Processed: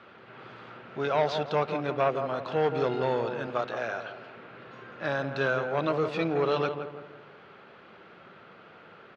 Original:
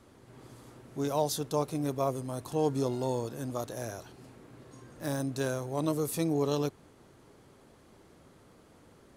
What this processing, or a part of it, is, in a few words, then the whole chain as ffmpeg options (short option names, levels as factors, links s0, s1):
overdrive pedal into a guitar cabinet: -filter_complex "[0:a]asettb=1/sr,asplit=3[s0][s1][s2];[s0]atrim=end=3.474[s3];[s1]atrim=start=3.47:end=4.37,asetpts=PTS-STARTPTS,afade=t=in:d=0.004:c=qsin,afade=t=out:st=0.896:d=0.004:c=qsin,highpass=f=230:p=1[s4];[s2]atrim=start=4.366[s5];[s3][s4]acrossfade=d=0.004:c1=hsin:c2=qsin[s6];[s6][s5]acrossfade=d=0.004:c1=qsin:c2=hsin,asplit=2[s7][s8];[s8]adelay=168,lowpass=f=1200:p=1,volume=0.398,asplit=2[s9][s10];[s10]adelay=168,lowpass=f=1200:p=1,volume=0.46,asplit=2[s11][s12];[s12]adelay=168,lowpass=f=1200:p=1,volume=0.46,asplit=2[s13][s14];[s14]adelay=168,lowpass=f=1200:p=1,volume=0.46,asplit=2[s15][s16];[s16]adelay=168,lowpass=f=1200:p=1,volume=0.46[s17];[s7][s9][s11][s13][s15][s17]amix=inputs=6:normalize=0,asplit=2[s18][s19];[s19]highpass=f=720:p=1,volume=6.31,asoftclip=type=tanh:threshold=0.2[s20];[s18][s20]amix=inputs=2:normalize=0,lowpass=f=5100:p=1,volume=0.501,highpass=96,equalizer=f=190:t=q:w=4:g=5,equalizer=f=280:t=q:w=4:g=-8,equalizer=f=990:t=q:w=4:g=-3,equalizer=f=1400:t=q:w=4:g=8,equalizer=f=2600:t=q:w=4:g=5,lowpass=f=3600:w=0.5412,lowpass=f=3600:w=1.3066"